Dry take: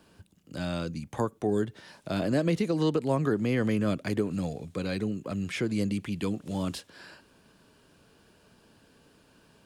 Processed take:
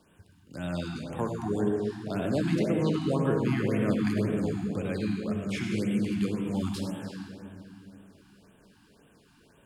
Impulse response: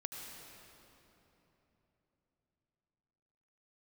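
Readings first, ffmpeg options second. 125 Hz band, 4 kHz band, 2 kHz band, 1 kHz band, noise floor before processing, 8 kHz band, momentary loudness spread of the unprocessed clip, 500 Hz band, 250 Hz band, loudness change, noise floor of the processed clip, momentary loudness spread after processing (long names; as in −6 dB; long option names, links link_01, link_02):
+1.0 dB, −1.5 dB, −0.5 dB, −1.0 dB, −62 dBFS, −1.0 dB, 9 LU, 0.0 dB, +1.5 dB, +0.5 dB, −61 dBFS, 13 LU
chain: -filter_complex "[1:a]atrim=start_sample=2205,asetrate=57330,aresample=44100[link_01];[0:a][link_01]afir=irnorm=-1:irlink=0,afftfilt=real='re*(1-between(b*sr/1024,470*pow(5400/470,0.5+0.5*sin(2*PI*1.9*pts/sr))/1.41,470*pow(5400/470,0.5+0.5*sin(2*PI*1.9*pts/sr))*1.41))':imag='im*(1-between(b*sr/1024,470*pow(5400/470,0.5+0.5*sin(2*PI*1.9*pts/sr))/1.41,470*pow(5400/470,0.5+0.5*sin(2*PI*1.9*pts/sr))*1.41))':win_size=1024:overlap=0.75,volume=3.5dB"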